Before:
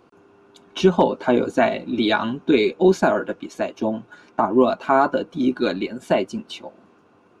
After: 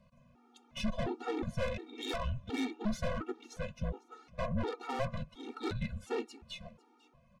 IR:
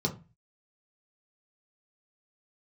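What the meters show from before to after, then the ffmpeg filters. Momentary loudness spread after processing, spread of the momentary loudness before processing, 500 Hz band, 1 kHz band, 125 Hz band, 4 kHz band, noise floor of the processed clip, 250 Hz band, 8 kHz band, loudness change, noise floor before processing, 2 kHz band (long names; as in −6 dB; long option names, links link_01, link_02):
11 LU, 13 LU, −20.0 dB, −19.5 dB, −7.5 dB, −13.5 dB, −66 dBFS, −18.0 dB, can't be measured, −18.0 dB, −56 dBFS, −17.0 dB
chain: -filter_complex "[0:a]afreqshift=-160,aeval=exprs='(tanh(14.1*val(0)+0.45)-tanh(0.45))/14.1':channel_layout=same,asplit=2[link_01][link_02];[link_02]aecho=0:1:499:0.0794[link_03];[link_01][link_03]amix=inputs=2:normalize=0,afftfilt=real='re*gt(sin(2*PI*1.4*pts/sr)*(1-2*mod(floor(b*sr/1024/240),2)),0)':imag='im*gt(sin(2*PI*1.4*pts/sr)*(1-2*mod(floor(b*sr/1024/240),2)),0)':win_size=1024:overlap=0.75,volume=-5.5dB"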